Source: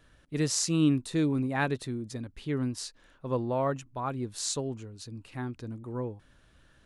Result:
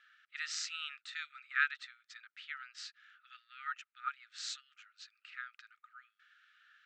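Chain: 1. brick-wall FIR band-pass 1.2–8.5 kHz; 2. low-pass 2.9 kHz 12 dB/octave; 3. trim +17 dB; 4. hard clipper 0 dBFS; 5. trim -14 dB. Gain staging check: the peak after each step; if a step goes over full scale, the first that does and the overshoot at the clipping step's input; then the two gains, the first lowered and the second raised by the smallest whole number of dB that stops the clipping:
-13.5 dBFS, -19.0 dBFS, -2.0 dBFS, -2.0 dBFS, -16.0 dBFS; nothing clips

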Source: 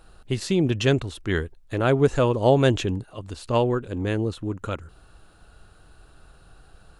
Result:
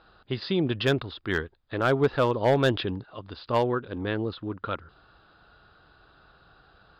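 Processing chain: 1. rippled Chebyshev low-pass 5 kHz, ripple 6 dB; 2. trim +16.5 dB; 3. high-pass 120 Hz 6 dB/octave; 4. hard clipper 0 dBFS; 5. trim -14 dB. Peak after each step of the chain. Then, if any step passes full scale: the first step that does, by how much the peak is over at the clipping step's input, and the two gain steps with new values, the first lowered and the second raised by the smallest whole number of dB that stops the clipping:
-10.0 dBFS, +6.5 dBFS, +7.0 dBFS, 0.0 dBFS, -14.0 dBFS; step 2, 7.0 dB; step 2 +9.5 dB, step 5 -7 dB

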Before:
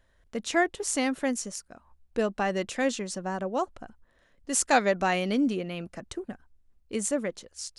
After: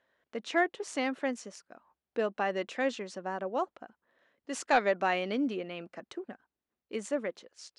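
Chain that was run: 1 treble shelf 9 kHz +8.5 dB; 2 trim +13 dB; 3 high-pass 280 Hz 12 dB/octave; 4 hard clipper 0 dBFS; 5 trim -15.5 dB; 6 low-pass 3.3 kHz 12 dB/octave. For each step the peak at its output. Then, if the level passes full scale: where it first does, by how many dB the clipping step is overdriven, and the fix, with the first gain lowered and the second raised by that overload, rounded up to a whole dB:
-3.5 dBFS, +9.5 dBFS, +9.5 dBFS, 0.0 dBFS, -15.5 dBFS, -15.0 dBFS; step 2, 9.5 dB; step 2 +3 dB, step 5 -5.5 dB

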